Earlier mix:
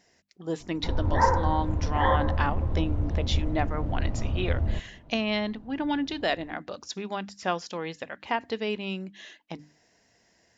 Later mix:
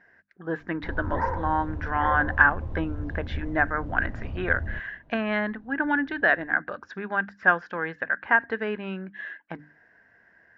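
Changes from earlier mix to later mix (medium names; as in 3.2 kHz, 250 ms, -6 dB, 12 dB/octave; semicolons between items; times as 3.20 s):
speech: add resonant low-pass 1.6 kHz, resonance Q 9.8; background -6.0 dB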